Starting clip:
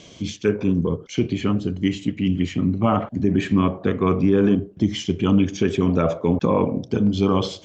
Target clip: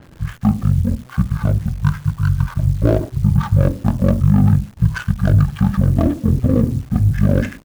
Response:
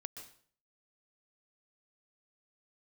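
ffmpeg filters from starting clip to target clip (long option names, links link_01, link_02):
-af "bandreject=frequency=252.7:width_type=h:width=4,bandreject=frequency=505.4:width_type=h:width=4,bandreject=frequency=758.1:width_type=h:width=4,bandreject=frequency=1010.8:width_type=h:width=4,adynamicsmooth=sensitivity=4.5:basefreq=1300,asetrate=22050,aresample=44100,atempo=2,acrusher=bits=9:dc=4:mix=0:aa=0.000001,adynamicequalizer=threshold=0.002:dfrequency=5500:dqfactor=0.7:tfrequency=5500:tqfactor=0.7:attack=5:release=100:ratio=0.375:range=2:mode=boostabove:tftype=highshelf,volume=5dB"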